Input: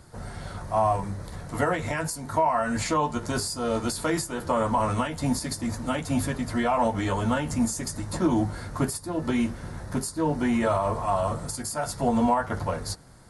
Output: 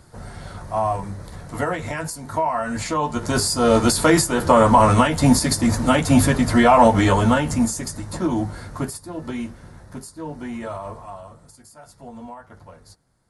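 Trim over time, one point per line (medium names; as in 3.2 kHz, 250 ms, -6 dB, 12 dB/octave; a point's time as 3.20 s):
2.92 s +1 dB
3.61 s +11 dB
7.01 s +11 dB
8.04 s +1 dB
8.58 s +1 dB
9.91 s -7 dB
10.90 s -7 dB
11.30 s -15.5 dB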